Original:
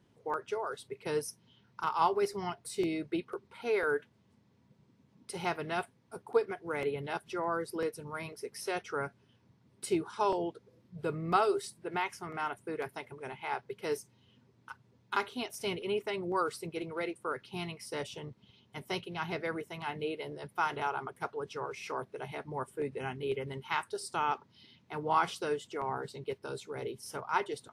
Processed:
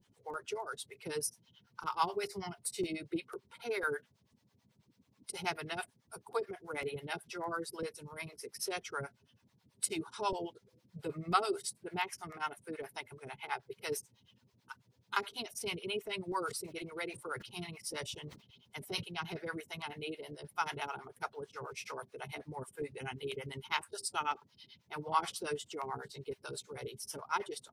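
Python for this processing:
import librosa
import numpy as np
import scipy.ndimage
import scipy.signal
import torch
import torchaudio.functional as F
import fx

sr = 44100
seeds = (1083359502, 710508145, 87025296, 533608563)

y = fx.spec_quant(x, sr, step_db=15)
y = fx.low_shelf(y, sr, hz=61.0, db=8.0)
y = fx.harmonic_tremolo(y, sr, hz=9.2, depth_pct=100, crossover_hz=550.0)
y = fx.high_shelf(y, sr, hz=2600.0, db=11.0)
y = fx.sustainer(y, sr, db_per_s=130.0, at=(16.46, 19.02), fade=0.02)
y = y * librosa.db_to_amplitude(-1.0)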